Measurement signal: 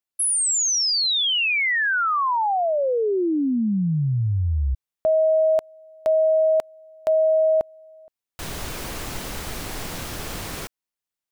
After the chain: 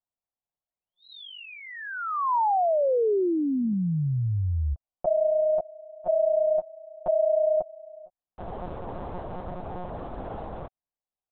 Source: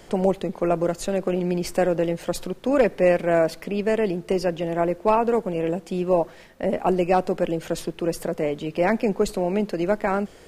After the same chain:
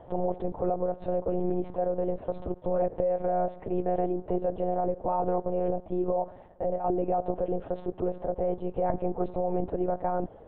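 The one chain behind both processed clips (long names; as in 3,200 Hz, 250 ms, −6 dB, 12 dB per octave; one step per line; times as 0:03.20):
drawn EQ curve 280 Hz 0 dB, 770 Hz +8 dB, 2,200 Hz −18 dB
brickwall limiter −15.5 dBFS
one-pitch LPC vocoder at 8 kHz 180 Hz
level −4 dB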